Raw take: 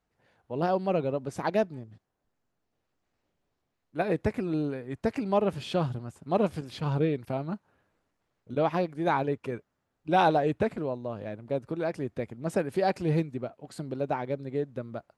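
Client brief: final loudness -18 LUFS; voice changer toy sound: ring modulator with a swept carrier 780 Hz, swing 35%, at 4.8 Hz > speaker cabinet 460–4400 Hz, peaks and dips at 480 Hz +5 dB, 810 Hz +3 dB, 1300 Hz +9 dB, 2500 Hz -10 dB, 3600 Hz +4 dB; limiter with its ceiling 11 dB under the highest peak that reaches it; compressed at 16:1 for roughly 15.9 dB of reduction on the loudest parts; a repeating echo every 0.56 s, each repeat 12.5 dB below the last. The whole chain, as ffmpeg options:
-af "acompressor=threshold=-35dB:ratio=16,alimiter=level_in=11.5dB:limit=-24dB:level=0:latency=1,volume=-11.5dB,aecho=1:1:560|1120|1680:0.237|0.0569|0.0137,aeval=exprs='val(0)*sin(2*PI*780*n/s+780*0.35/4.8*sin(2*PI*4.8*n/s))':c=same,highpass=460,equalizer=f=480:t=q:w=4:g=5,equalizer=f=810:t=q:w=4:g=3,equalizer=f=1.3k:t=q:w=4:g=9,equalizer=f=2.5k:t=q:w=4:g=-10,equalizer=f=3.6k:t=q:w=4:g=4,lowpass=f=4.4k:w=0.5412,lowpass=f=4.4k:w=1.3066,volume=26.5dB"

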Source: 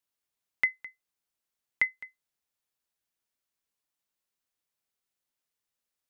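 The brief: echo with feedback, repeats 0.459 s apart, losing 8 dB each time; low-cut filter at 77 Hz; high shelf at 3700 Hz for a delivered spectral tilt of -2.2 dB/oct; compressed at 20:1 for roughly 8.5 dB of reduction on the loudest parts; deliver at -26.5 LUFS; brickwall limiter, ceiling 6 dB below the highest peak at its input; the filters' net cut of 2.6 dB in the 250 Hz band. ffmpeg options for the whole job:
-af "highpass=77,equalizer=f=250:t=o:g=-3.5,highshelf=f=3.7k:g=4.5,acompressor=threshold=-28dB:ratio=20,alimiter=limit=-19.5dB:level=0:latency=1,aecho=1:1:459|918|1377|1836|2295:0.398|0.159|0.0637|0.0255|0.0102,volume=18dB"

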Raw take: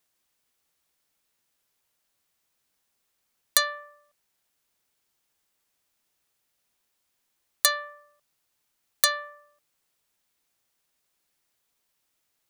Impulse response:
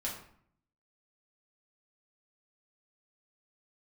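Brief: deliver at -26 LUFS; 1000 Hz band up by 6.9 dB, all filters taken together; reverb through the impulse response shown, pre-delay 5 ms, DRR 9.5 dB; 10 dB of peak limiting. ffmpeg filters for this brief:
-filter_complex "[0:a]equalizer=f=1k:t=o:g=8.5,alimiter=limit=-12dB:level=0:latency=1,asplit=2[a][b];[1:a]atrim=start_sample=2205,adelay=5[c];[b][c]afir=irnorm=-1:irlink=0,volume=-11.5dB[d];[a][d]amix=inputs=2:normalize=0,volume=3dB"

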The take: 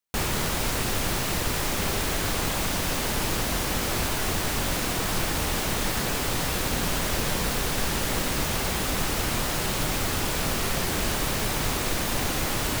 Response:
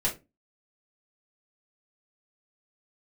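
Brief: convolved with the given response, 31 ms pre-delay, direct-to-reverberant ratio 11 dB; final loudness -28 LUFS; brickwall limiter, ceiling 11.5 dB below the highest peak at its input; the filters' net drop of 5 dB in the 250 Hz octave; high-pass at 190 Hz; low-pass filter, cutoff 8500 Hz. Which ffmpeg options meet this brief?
-filter_complex "[0:a]highpass=190,lowpass=8.5k,equalizer=f=250:t=o:g=-4.5,alimiter=level_in=4dB:limit=-24dB:level=0:latency=1,volume=-4dB,asplit=2[a][b];[1:a]atrim=start_sample=2205,adelay=31[c];[b][c]afir=irnorm=-1:irlink=0,volume=-19dB[d];[a][d]amix=inputs=2:normalize=0,volume=7dB"

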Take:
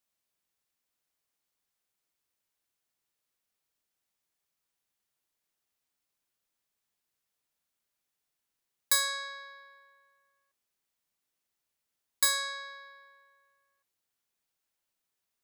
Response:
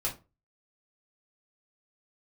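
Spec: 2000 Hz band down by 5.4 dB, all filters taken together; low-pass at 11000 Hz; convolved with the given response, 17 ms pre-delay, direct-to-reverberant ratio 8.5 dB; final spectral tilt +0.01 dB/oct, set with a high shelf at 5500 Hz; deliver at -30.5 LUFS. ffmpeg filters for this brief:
-filter_complex "[0:a]lowpass=11k,equalizer=f=2k:t=o:g=-6,highshelf=f=5.5k:g=-7.5,asplit=2[a][b];[1:a]atrim=start_sample=2205,adelay=17[c];[b][c]afir=irnorm=-1:irlink=0,volume=-13dB[d];[a][d]amix=inputs=2:normalize=0,volume=4dB"

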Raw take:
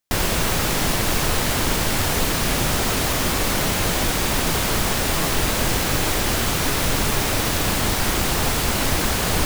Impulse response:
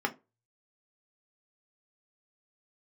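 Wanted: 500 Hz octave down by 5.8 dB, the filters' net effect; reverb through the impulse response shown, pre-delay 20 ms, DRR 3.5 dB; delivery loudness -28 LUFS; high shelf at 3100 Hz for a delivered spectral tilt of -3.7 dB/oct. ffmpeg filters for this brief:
-filter_complex "[0:a]equalizer=f=500:t=o:g=-7.5,highshelf=f=3.1k:g=-5,asplit=2[a][b];[1:a]atrim=start_sample=2205,adelay=20[c];[b][c]afir=irnorm=-1:irlink=0,volume=-11.5dB[d];[a][d]amix=inputs=2:normalize=0,volume=-6dB"

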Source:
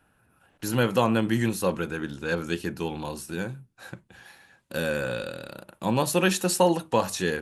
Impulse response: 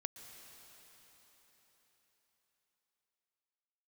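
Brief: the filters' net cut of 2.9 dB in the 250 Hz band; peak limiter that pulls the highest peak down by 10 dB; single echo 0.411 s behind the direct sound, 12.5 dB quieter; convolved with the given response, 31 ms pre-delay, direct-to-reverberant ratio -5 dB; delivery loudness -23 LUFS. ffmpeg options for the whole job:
-filter_complex "[0:a]equalizer=f=250:t=o:g=-4,alimiter=limit=-19dB:level=0:latency=1,aecho=1:1:411:0.237,asplit=2[a][b];[1:a]atrim=start_sample=2205,adelay=31[c];[b][c]afir=irnorm=-1:irlink=0,volume=7.5dB[d];[a][d]amix=inputs=2:normalize=0,volume=2.5dB"

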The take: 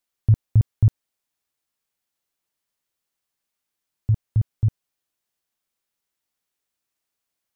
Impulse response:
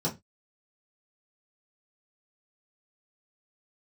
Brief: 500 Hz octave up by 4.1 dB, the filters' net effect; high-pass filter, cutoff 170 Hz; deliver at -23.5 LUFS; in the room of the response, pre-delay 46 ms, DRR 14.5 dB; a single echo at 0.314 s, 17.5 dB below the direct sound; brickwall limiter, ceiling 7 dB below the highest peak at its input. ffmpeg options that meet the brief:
-filter_complex "[0:a]highpass=170,equalizer=f=500:t=o:g=5.5,alimiter=limit=-24dB:level=0:latency=1,aecho=1:1:314:0.133,asplit=2[a][b];[1:a]atrim=start_sample=2205,adelay=46[c];[b][c]afir=irnorm=-1:irlink=0,volume=-21.5dB[d];[a][d]amix=inputs=2:normalize=0,volume=13dB"

